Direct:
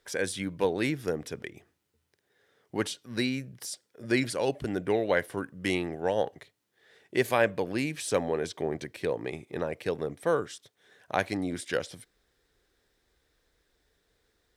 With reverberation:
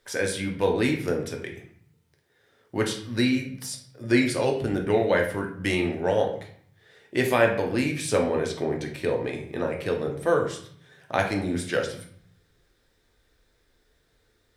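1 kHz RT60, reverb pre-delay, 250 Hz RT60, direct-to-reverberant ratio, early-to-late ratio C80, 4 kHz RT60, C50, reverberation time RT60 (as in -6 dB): 0.60 s, 3 ms, 0.80 s, 1.0 dB, 11.5 dB, 0.45 s, 7.5 dB, 0.55 s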